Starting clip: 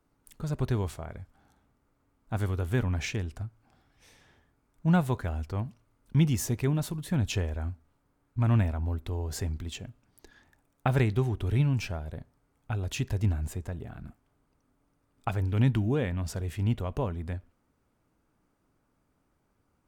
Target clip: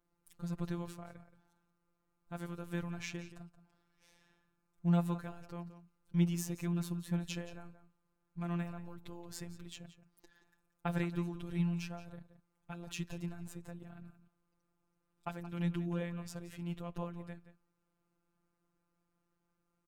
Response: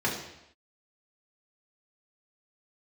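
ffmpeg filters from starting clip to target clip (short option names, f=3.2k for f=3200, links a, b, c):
-filter_complex "[0:a]afftfilt=real='hypot(re,im)*cos(PI*b)':imag='0':win_size=1024:overlap=0.75,asplit=2[a][b];[b]adelay=174.9,volume=-13dB,highshelf=f=4k:g=-3.94[c];[a][c]amix=inputs=2:normalize=0,volume=-5.5dB"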